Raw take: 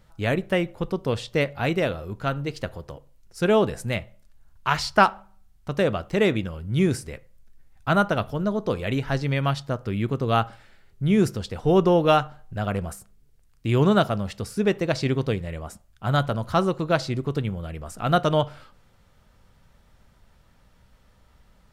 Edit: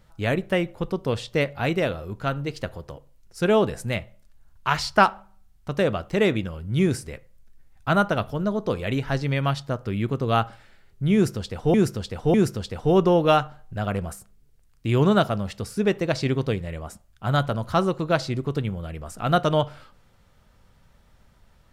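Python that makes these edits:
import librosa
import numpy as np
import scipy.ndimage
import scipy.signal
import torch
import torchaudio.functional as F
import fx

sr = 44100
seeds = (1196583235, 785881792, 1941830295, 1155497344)

y = fx.edit(x, sr, fx.repeat(start_s=11.14, length_s=0.6, count=3), tone=tone)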